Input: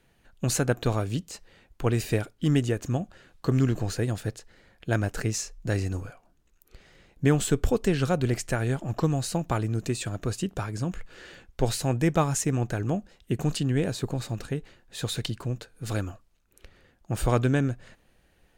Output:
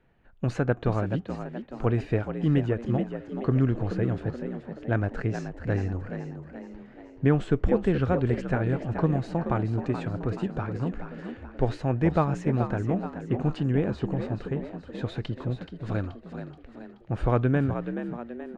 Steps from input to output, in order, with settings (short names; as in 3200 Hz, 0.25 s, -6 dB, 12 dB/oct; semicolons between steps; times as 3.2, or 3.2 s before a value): LPF 1900 Hz 12 dB/oct; on a send: frequency-shifting echo 0.428 s, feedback 49%, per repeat +58 Hz, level -9 dB